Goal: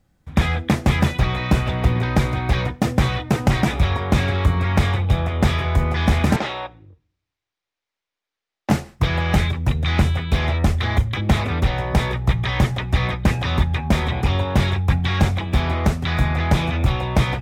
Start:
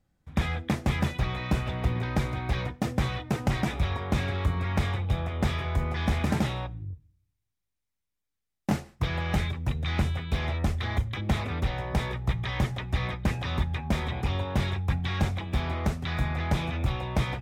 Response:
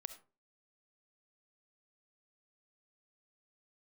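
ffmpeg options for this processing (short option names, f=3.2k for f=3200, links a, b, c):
-filter_complex "[0:a]asettb=1/sr,asplit=3[a][b][c];[a]atrim=end=6.364[d];[b]atrim=start=6.36:end=8.7,asetpts=PTS-STARTPTS,afade=t=in:d=0.004:c=qsin,afade=t=out:st=2.336:d=0.004:c=qsin,acrossover=split=340 5600:gain=0.1 1 0.0794[e][f][g];[e][f][g]amix=inputs=3:normalize=0[h];[c]atrim=start=8.696[i];[d][h]acrossfade=d=0.004:c1=hsin:c2=qsin[j];[j][i]acrossfade=d=0.004:c1=qsin:c2=hsin,volume=9dB"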